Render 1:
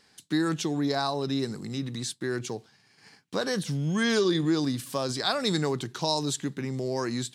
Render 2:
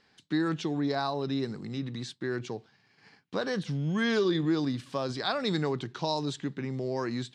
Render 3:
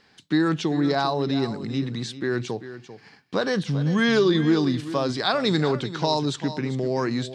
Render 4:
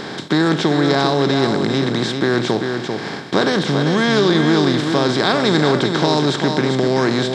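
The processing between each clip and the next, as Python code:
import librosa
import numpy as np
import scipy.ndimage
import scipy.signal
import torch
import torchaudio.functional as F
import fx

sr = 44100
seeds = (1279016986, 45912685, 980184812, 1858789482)

y1 = scipy.signal.sosfilt(scipy.signal.butter(2, 3900.0, 'lowpass', fs=sr, output='sos'), x)
y1 = F.gain(torch.from_numpy(y1), -2.0).numpy()
y2 = y1 + 10.0 ** (-13.0 / 20.0) * np.pad(y1, (int(393 * sr / 1000.0), 0))[:len(y1)]
y2 = F.gain(torch.from_numpy(y2), 7.0).numpy()
y3 = fx.bin_compress(y2, sr, power=0.4)
y3 = F.gain(torch.from_numpy(y3), 1.0).numpy()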